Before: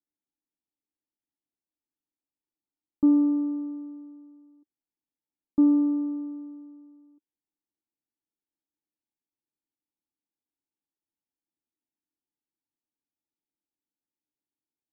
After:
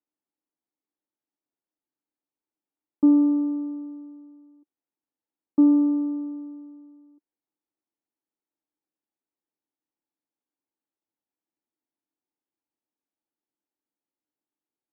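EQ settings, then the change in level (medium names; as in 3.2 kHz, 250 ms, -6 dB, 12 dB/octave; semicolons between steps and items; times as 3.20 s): band-pass filter 600 Hz, Q 0.55; distance through air 240 m; +5.5 dB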